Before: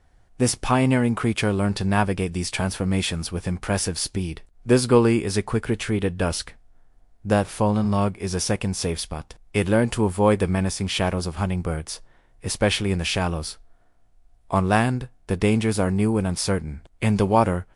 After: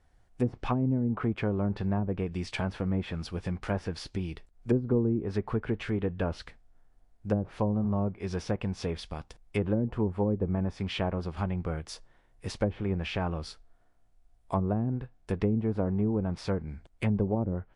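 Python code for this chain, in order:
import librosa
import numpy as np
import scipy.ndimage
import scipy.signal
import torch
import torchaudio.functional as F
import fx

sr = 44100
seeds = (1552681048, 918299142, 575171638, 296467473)

y = fx.env_lowpass_down(x, sr, base_hz=340.0, full_db=-14.5)
y = y * librosa.db_to_amplitude(-6.5)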